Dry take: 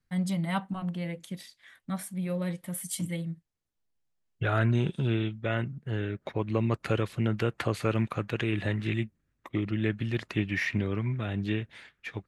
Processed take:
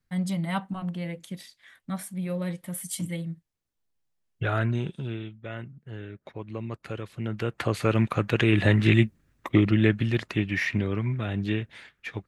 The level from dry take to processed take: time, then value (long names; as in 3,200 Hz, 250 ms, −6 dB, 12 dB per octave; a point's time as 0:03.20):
0:04.48 +1 dB
0:05.25 −7.5 dB
0:07.02 −7.5 dB
0:07.72 +3 dB
0:08.86 +10.5 dB
0:09.55 +10.5 dB
0:10.38 +2.5 dB